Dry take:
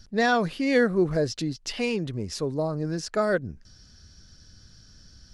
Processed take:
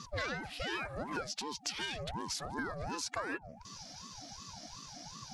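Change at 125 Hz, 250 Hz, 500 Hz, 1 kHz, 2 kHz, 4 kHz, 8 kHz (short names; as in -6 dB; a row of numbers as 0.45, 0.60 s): -14.5, -17.5, -18.0, -9.5, -9.5, -4.0, -1.5 dB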